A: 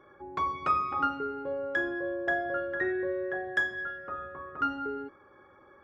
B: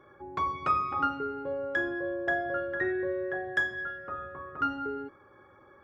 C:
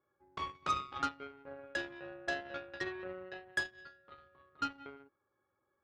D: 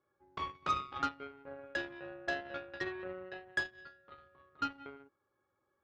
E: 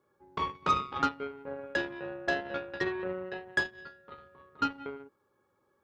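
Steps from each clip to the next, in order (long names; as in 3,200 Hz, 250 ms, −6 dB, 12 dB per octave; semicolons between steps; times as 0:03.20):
parametric band 110 Hz +5 dB 0.91 octaves
harmonic generator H 7 −18 dB, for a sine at −15 dBFS; level −6.5 dB
high-frequency loss of the air 73 metres; level +1 dB
hollow resonant body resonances 200/440/920 Hz, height 7 dB, ringing for 25 ms; level +5 dB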